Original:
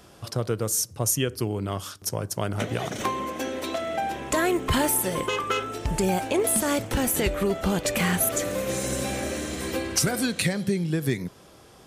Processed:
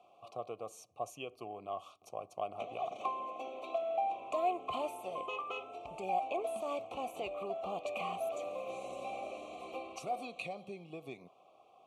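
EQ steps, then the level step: vowel filter a; Butterworth band-stop 1.6 kHz, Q 1.8; band-stop 5.1 kHz, Q 5.6; 0.0 dB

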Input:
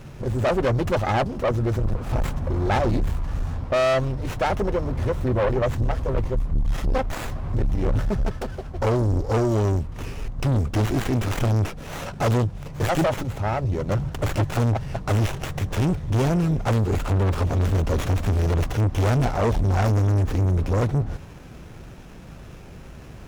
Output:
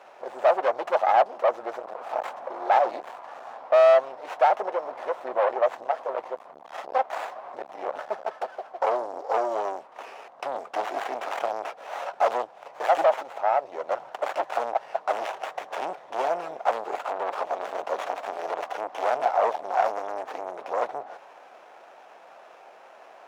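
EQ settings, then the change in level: ladder high-pass 600 Hz, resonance 50%; low-pass 1.9 kHz 6 dB/octave; +9.0 dB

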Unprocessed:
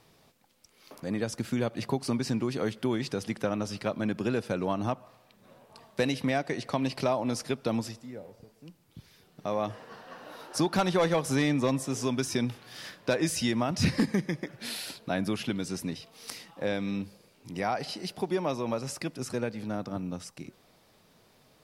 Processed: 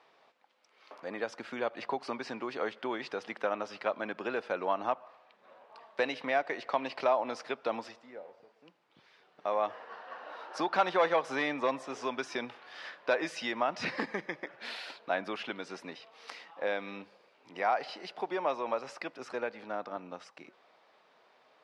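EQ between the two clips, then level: band-pass 710–3500 Hz; treble shelf 2.1 kHz -9 dB; +5.5 dB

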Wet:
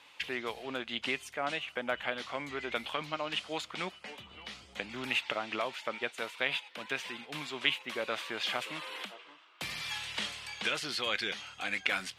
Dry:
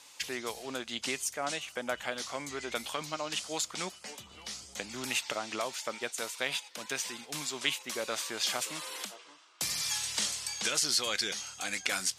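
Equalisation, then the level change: resonant high shelf 4.3 kHz -13.5 dB, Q 1.5; 0.0 dB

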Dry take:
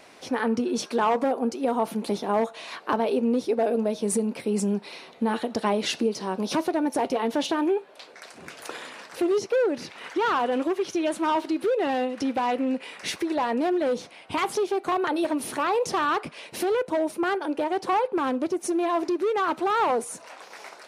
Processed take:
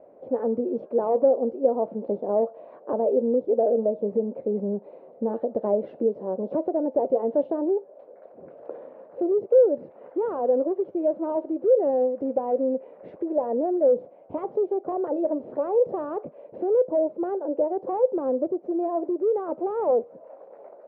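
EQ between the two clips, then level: resonant low-pass 560 Hz, resonance Q 4.9; distance through air 190 m; peaking EQ 82 Hz -3 dB 1.5 oct; -4.5 dB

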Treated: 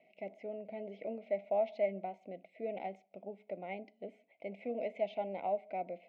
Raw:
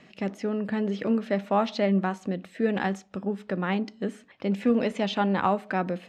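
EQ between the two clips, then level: two resonant band-passes 1.2 kHz, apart 1.7 oct; Butterworth band-stop 1.7 kHz, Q 2.7; tilt shelf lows +5.5 dB, about 840 Hz; -2.0 dB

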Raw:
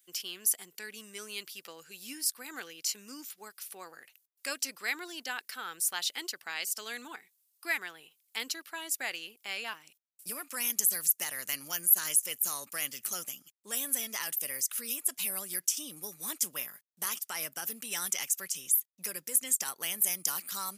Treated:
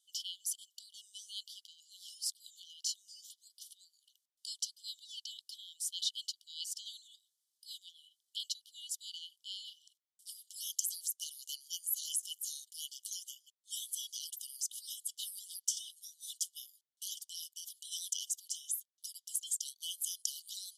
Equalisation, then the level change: brick-wall FIR high-pass 2.9 kHz; low-pass 9 kHz 12 dB/octave; treble shelf 6 kHz -8 dB; +1.0 dB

